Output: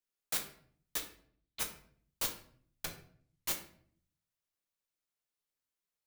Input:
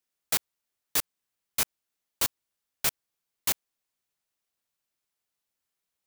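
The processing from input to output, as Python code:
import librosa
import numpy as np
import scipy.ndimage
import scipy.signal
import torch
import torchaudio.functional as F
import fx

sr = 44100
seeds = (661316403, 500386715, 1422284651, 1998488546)

y = fx.ladder_lowpass(x, sr, hz=4300.0, resonance_pct=60, at=(0.97, 1.59), fade=0.02)
y = fx.env_lowpass_down(y, sr, base_hz=310.0, full_db=-24.5, at=(2.85, 3.48))
y = fx.room_shoebox(y, sr, seeds[0], volume_m3=72.0, walls='mixed', distance_m=0.56)
y = F.gain(torch.from_numpy(y), -9.0).numpy()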